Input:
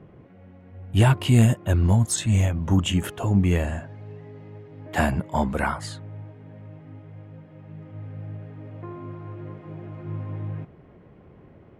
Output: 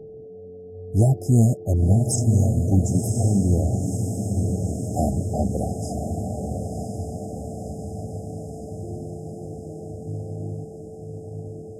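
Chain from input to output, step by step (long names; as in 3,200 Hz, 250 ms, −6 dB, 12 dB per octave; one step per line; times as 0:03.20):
steady tone 440 Hz −38 dBFS
feedback delay with all-pass diffusion 1,044 ms, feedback 64%, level −5 dB
brick-wall band-stop 810–4,900 Hz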